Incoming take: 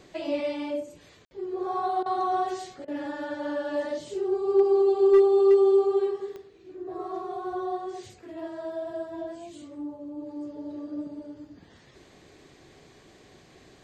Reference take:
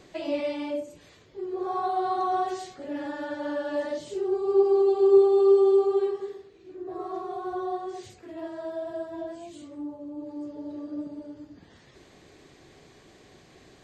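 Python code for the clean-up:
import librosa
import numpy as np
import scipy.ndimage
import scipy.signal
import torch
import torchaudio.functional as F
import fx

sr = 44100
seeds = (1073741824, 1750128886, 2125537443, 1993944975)

y = fx.fix_declip(x, sr, threshold_db=-12.5)
y = fx.fix_declick_ar(y, sr, threshold=10.0)
y = fx.fix_ambience(y, sr, seeds[0], print_start_s=11.64, print_end_s=12.14, start_s=1.25, end_s=1.31)
y = fx.fix_interpolate(y, sr, at_s=(2.03, 2.85), length_ms=28.0)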